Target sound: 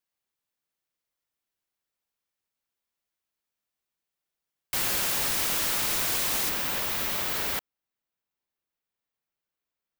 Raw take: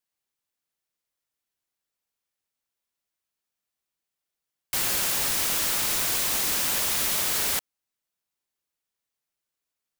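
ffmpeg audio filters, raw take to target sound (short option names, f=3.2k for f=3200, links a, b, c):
-af "asetnsamples=n=441:p=0,asendcmd='6.49 equalizer g -10.5',equalizer=f=8.7k:t=o:w=1.9:g=-3.5"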